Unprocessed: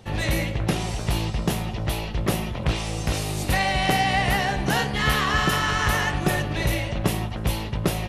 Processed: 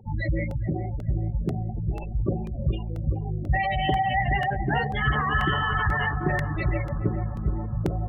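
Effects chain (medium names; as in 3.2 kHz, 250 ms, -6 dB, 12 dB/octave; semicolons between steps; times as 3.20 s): spectral gate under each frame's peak -10 dB strong; dynamic bell 190 Hz, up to -8 dB, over -43 dBFS, Q 5.7; on a send: bucket-brigade echo 421 ms, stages 4096, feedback 63%, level -10.5 dB; on the sum: crackling interface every 0.49 s, samples 64, repeat, from 0.51 s; loudspeaker Doppler distortion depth 0.1 ms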